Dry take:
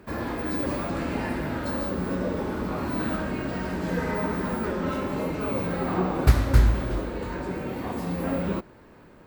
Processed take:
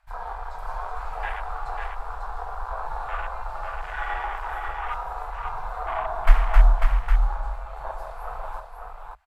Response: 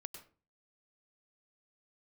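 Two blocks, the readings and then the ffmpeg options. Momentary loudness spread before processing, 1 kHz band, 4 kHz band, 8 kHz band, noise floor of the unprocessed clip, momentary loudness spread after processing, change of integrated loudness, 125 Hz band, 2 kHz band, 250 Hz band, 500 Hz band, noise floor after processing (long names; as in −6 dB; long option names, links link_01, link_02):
9 LU, +4.5 dB, −5.0 dB, below −10 dB, −51 dBFS, 14 LU, −1.5 dB, −4.5 dB, +0.5 dB, below −30 dB, −8.5 dB, −40 dBFS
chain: -filter_complex "[0:a]afftfilt=real='re*(1-between(b*sr/4096,130,720))':imag='im*(1-between(b*sr/4096,130,720))':win_size=4096:overlap=0.75,afwtdn=0.02,afreqshift=-92,asplit=2[link_01][link_02];[link_02]aecho=0:1:545:0.596[link_03];[link_01][link_03]amix=inputs=2:normalize=0,aresample=32000,aresample=44100,volume=4.5dB"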